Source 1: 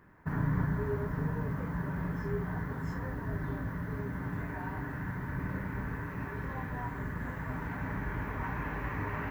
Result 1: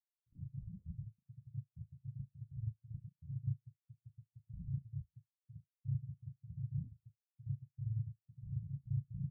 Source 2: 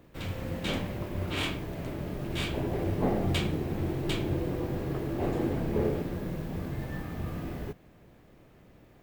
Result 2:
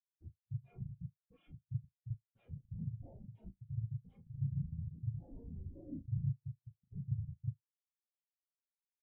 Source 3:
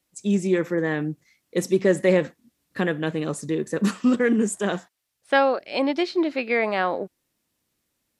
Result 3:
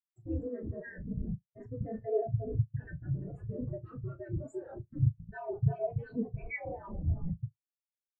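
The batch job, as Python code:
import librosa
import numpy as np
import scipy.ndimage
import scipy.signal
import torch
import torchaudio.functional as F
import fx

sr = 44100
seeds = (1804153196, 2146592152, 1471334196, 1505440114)

y = scipy.signal.sosfilt(scipy.signal.butter(2, 910.0, 'highpass', fs=sr, output='sos'), x)
y = fx.rider(y, sr, range_db=3, speed_s=2.0)
y = fx.cheby_harmonics(y, sr, harmonics=(2,), levels_db=(-35,), full_scale_db=-11.0)
y = fx.echo_alternate(y, sr, ms=347, hz=1600.0, feedback_pct=51, wet_db=-8.5)
y = fx.schmitt(y, sr, flips_db=-35.5)
y = y * np.sin(2.0 * np.pi * 120.0 * np.arange(len(y)) / sr)
y = fx.room_flutter(y, sr, wall_m=6.3, rt60_s=0.39)
y = fx.spectral_expand(y, sr, expansion=4.0)
y = y * 10.0 ** (8.5 / 20.0)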